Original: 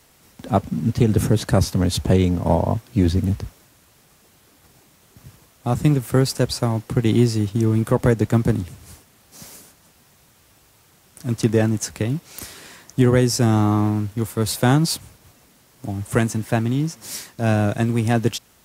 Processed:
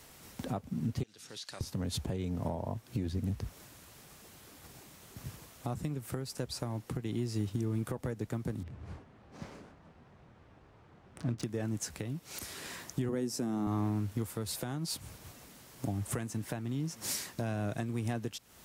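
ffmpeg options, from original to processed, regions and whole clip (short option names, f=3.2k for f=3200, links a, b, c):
-filter_complex "[0:a]asettb=1/sr,asplit=3[a][b][c];[a]atrim=end=1.034[d];[b]atrim=start=1.03:end=1.61,asetpts=PTS-STARTPTS,afade=t=in:d=0.004:c=qsin,afade=t=out:st=0.576:d=0.004:c=qsin,bandpass=f=4.6k:t=q:w=1.6,acompressor=threshold=-40dB:ratio=6:attack=3.2:release=140:knee=1:detection=peak[e];[c]atrim=start=1.606[f];[d][e]acrossfade=d=0.004:c1=hsin:c2=qsin[g];[g][f]acrossfade=d=0.004:c1=qsin:c2=hsin,asettb=1/sr,asplit=3[h][i][j];[h]atrim=end=8.634[k];[i]atrim=start=8.63:end=11.43,asetpts=PTS-STARTPTS,afade=t=in:d=0.004:c=qsin,afade=t=out:st=2.796:d=0.004:c=qsin,adynamicsmooth=sensitivity=6:basefreq=1.5k,asplit=2[l][m];[m]adelay=25,volume=-11dB[n];[l][n]amix=inputs=2:normalize=0,atrim=end_sample=123480[o];[j]atrim=start=11.426[p];[k][o]acrossfade=d=0.004:c1=hsin:c2=qsin[q];[q][p]acrossfade=d=0.004:c1=qsin:c2=hsin,asettb=1/sr,asplit=3[r][s][t];[r]atrim=end=13.094[u];[s]atrim=start=13.09:end=13.67,asetpts=PTS-STARTPTS,afade=t=in:d=0.004:c=qsin,afade=t=out:st=0.576:d=0.004:c=qsin,highpass=f=220:t=q:w=1.7,equalizer=f=2.8k:w=0.41:g=-4[v];[t]atrim=start=13.666[w];[u][v]acrossfade=d=0.004:c1=hsin:c2=qsin[x];[x][w]acrossfade=d=0.004:c1=qsin:c2=hsin,acompressor=threshold=-30dB:ratio=5,alimiter=limit=-24dB:level=0:latency=1:release=438"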